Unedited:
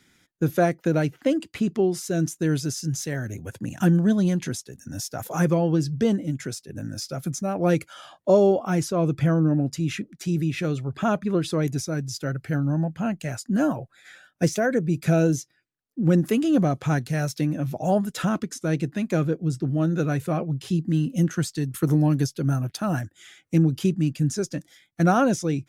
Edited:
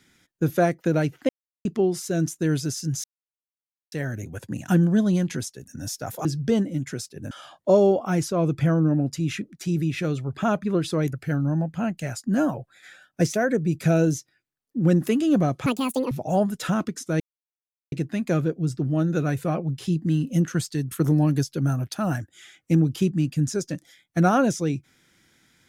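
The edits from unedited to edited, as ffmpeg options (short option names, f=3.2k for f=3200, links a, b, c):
-filter_complex "[0:a]asplit=10[a][b][c][d][e][f][g][h][i][j];[a]atrim=end=1.29,asetpts=PTS-STARTPTS,afade=t=out:st=1.286:d=0.004:c=hsin[k];[b]atrim=start=1.29:end=1.65,asetpts=PTS-STARTPTS,volume=0[l];[c]atrim=start=1.65:end=3.04,asetpts=PTS-STARTPTS,afade=t=in:d=0.004:c=hsin,afade=t=out:st=1.386:d=0.004:c=hsin,apad=pad_dur=0.88[m];[d]atrim=start=3.04:end=5.372,asetpts=PTS-STARTPTS,afade=t=in:d=0.004:c=hsin[n];[e]atrim=start=5.778:end=6.842[o];[f]atrim=start=7.908:end=11.732[p];[g]atrim=start=12.348:end=16.884[q];[h]atrim=start=16.88:end=17.66,asetpts=PTS-STARTPTS,asetrate=76293,aresample=44100,atrim=end_sample=19883,asetpts=PTS-STARTPTS[r];[i]atrim=start=17.656:end=18.75,asetpts=PTS-STARTPTS,afade=t=out:st=1.09:d=0.004:c=hsin,apad=pad_dur=0.72[s];[j]atrim=start=18.75,asetpts=PTS-STARTPTS,afade=t=in:d=0.004:c=hsin[t];[k][l][m][n]concat=n=4:v=0:a=1[u];[u][o]acrossfade=d=0.004:c1=hsin:c2=hsin[v];[v][p]acrossfade=d=0.004:c1=hsin:c2=hsin[w];[w][q]acrossfade=d=0.004:c1=hsin:c2=hsin[x];[x][r]acrossfade=d=0.004:c1=hsin:c2=hsin[y];[s][t]concat=n=2:v=0:a=1[z];[y][z]acrossfade=d=0.004:c1=hsin:c2=hsin"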